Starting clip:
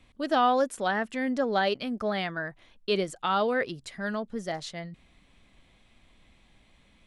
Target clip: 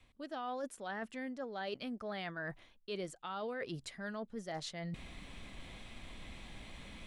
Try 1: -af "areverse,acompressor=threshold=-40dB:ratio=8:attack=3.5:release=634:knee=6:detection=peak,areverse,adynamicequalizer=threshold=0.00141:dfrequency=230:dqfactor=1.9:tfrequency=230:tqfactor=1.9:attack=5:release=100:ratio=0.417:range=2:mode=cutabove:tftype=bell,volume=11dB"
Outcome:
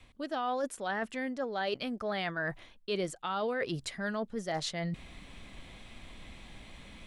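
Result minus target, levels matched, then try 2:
compressor: peak gain reduction -8 dB
-af "areverse,acompressor=threshold=-49dB:ratio=8:attack=3.5:release=634:knee=6:detection=peak,areverse,adynamicequalizer=threshold=0.00141:dfrequency=230:dqfactor=1.9:tfrequency=230:tqfactor=1.9:attack=5:release=100:ratio=0.417:range=2:mode=cutabove:tftype=bell,volume=11dB"

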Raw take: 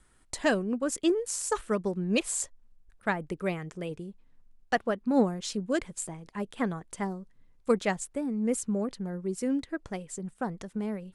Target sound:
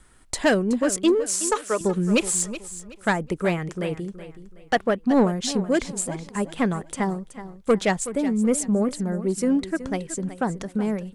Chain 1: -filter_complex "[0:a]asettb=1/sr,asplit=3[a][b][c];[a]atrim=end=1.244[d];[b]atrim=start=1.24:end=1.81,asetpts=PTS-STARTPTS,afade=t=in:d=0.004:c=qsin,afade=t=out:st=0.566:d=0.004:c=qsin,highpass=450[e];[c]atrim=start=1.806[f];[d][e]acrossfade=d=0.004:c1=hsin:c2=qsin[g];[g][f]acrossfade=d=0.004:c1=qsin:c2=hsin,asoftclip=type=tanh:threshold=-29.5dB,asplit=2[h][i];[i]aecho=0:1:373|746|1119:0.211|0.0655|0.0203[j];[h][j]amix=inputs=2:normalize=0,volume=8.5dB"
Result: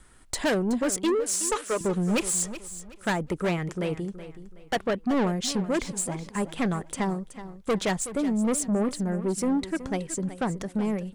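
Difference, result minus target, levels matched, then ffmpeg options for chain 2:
soft clip: distortion +8 dB
-filter_complex "[0:a]asettb=1/sr,asplit=3[a][b][c];[a]atrim=end=1.244[d];[b]atrim=start=1.24:end=1.81,asetpts=PTS-STARTPTS,afade=t=in:d=0.004:c=qsin,afade=t=out:st=0.566:d=0.004:c=qsin,highpass=450[e];[c]atrim=start=1.806[f];[d][e]acrossfade=d=0.004:c1=hsin:c2=qsin[g];[g][f]acrossfade=d=0.004:c1=qsin:c2=hsin,asoftclip=type=tanh:threshold=-20dB,asplit=2[h][i];[i]aecho=0:1:373|746|1119:0.211|0.0655|0.0203[j];[h][j]amix=inputs=2:normalize=0,volume=8.5dB"

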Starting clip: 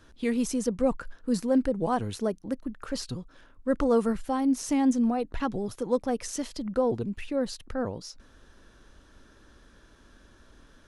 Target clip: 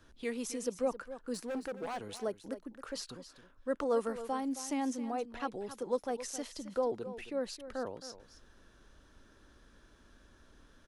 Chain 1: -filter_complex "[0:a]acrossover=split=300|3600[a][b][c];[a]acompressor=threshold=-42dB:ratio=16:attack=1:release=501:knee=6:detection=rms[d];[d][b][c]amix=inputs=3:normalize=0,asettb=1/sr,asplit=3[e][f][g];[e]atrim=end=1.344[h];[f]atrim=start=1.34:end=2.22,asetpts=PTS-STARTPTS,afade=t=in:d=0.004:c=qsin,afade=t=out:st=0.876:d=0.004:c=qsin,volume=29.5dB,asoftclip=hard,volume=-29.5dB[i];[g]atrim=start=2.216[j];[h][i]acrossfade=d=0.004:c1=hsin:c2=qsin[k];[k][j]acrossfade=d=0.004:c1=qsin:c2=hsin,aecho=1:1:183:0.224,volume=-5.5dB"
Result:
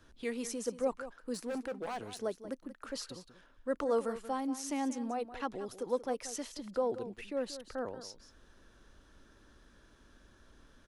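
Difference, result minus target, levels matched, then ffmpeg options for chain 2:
echo 85 ms early
-filter_complex "[0:a]acrossover=split=300|3600[a][b][c];[a]acompressor=threshold=-42dB:ratio=16:attack=1:release=501:knee=6:detection=rms[d];[d][b][c]amix=inputs=3:normalize=0,asettb=1/sr,asplit=3[e][f][g];[e]atrim=end=1.344[h];[f]atrim=start=1.34:end=2.22,asetpts=PTS-STARTPTS,afade=t=in:d=0.004:c=qsin,afade=t=out:st=0.876:d=0.004:c=qsin,volume=29.5dB,asoftclip=hard,volume=-29.5dB[i];[g]atrim=start=2.216[j];[h][i]acrossfade=d=0.004:c1=hsin:c2=qsin[k];[k][j]acrossfade=d=0.004:c1=qsin:c2=hsin,aecho=1:1:268:0.224,volume=-5.5dB"

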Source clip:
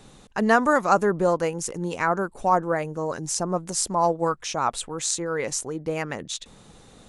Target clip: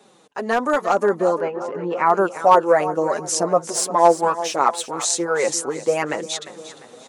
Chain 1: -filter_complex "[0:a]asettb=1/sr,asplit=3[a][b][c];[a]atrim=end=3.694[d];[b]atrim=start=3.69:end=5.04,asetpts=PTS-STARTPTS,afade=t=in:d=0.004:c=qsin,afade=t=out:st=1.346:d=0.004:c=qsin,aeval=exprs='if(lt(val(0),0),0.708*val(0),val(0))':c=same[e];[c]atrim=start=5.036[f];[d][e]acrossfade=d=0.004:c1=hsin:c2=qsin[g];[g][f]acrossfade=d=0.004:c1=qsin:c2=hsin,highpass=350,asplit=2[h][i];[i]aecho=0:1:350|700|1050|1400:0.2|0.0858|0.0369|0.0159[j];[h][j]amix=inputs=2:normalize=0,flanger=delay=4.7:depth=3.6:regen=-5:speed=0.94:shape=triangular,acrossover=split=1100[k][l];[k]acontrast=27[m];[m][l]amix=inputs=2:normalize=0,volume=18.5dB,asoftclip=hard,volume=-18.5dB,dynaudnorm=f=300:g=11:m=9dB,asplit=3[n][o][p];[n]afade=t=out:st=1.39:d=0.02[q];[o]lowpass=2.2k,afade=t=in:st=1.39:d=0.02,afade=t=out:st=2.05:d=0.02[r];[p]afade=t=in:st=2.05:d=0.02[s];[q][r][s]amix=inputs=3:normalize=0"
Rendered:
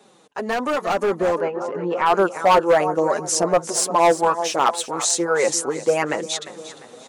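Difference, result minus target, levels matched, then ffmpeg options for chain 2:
overloaded stage: distortion +13 dB
-filter_complex "[0:a]asettb=1/sr,asplit=3[a][b][c];[a]atrim=end=3.694[d];[b]atrim=start=3.69:end=5.04,asetpts=PTS-STARTPTS,afade=t=in:d=0.004:c=qsin,afade=t=out:st=1.346:d=0.004:c=qsin,aeval=exprs='if(lt(val(0),0),0.708*val(0),val(0))':c=same[e];[c]atrim=start=5.036[f];[d][e]acrossfade=d=0.004:c1=hsin:c2=qsin[g];[g][f]acrossfade=d=0.004:c1=qsin:c2=hsin,highpass=350,asplit=2[h][i];[i]aecho=0:1:350|700|1050|1400:0.2|0.0858|0.0369|0.0159[j];[h][j]amix=inputs=2:normalize=0,flanger=delay=4.7:depth=3.6:regen=-5:speed=0.94:shape=triangular,acrossover=split=1100[k][l];[k]acontrast=27[m];[m][l]amix=inputs=2:normalize=0,volume=11dB,asoftclip=hard,volume=-11dB,dynaudnorm=f=300:g=11:m=9dB,asplit=3[n][o][p];[n]afade=t=out:st=1.39:d=0.02[q];[o]lowpass=2.2k,afade=t=in:st=1.39:d=0.02,afade=t=out:st=2.05:d=0.02[r];[p]afade=t=in:st=2.05:d=0.02[s];[q][r][s]amix=inputs=3:normalize=0"

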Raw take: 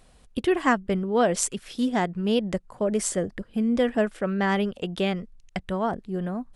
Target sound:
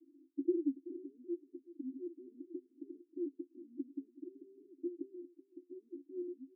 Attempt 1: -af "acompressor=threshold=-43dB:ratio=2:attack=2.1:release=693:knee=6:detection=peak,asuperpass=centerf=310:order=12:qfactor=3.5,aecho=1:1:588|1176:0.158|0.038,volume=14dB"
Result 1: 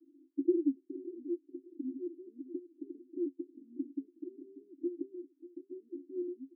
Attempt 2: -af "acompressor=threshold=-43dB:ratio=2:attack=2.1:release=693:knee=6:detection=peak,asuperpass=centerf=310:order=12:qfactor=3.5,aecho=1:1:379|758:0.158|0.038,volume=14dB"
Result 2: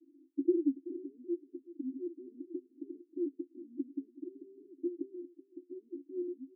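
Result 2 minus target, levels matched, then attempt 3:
compressor: peak gain reduction -4 dB
-af "acompressor=threshold=-51.5dB:ratio=2:attack=2.1:release=693:knee=6:detection=peak,asuperpass=centerf=310:order=12:qfactor=3.5,aecho=1:1:379|758:0.158|0.038,volume=14dB"

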